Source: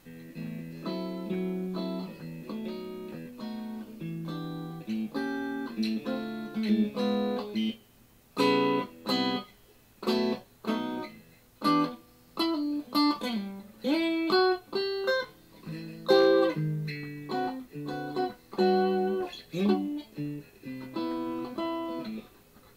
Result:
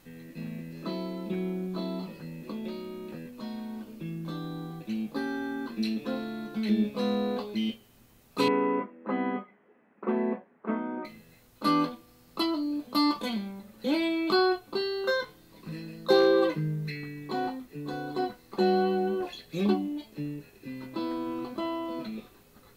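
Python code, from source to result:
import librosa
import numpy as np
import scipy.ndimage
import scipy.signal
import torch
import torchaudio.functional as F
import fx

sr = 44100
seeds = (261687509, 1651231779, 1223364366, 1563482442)

y = fx.ellip_bandpass(x, sr, low_hz=190.0, high_hz=2000.0, order=3, stop_db=40, at=(8.48, 11.05))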